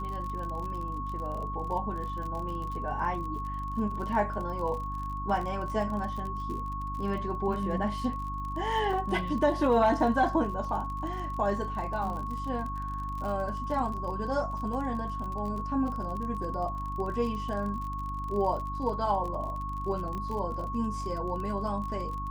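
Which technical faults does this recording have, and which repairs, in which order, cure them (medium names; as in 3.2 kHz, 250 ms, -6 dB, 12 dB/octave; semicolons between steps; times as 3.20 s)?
crackle 40 per s -36 dBFS
hum 50 Hz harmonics 6 -37 dBFS
whine 1.1 kHz -35 dBFS
8.93 s: dropout 2.2 ms
20.15 s: pop -26 dBFS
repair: de-click; de-hum 50 Hz, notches 6; band-stop 1.1 kHz, Q 30; interpolate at 8.93 s, 2.2 ms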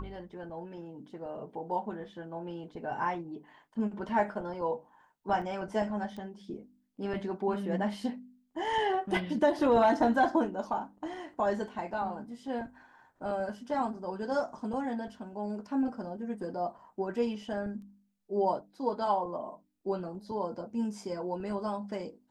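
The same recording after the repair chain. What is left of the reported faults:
20.15 s: pop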